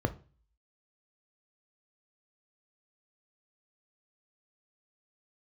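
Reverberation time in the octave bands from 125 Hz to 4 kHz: 0.55, 0.45, 0.40, 0.35, 0.35, 0.40 seconds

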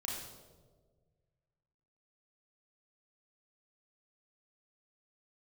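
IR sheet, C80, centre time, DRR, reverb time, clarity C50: 4.0 dB, 63 ms, −3.5 dB, 1.5 s, 2.0 dB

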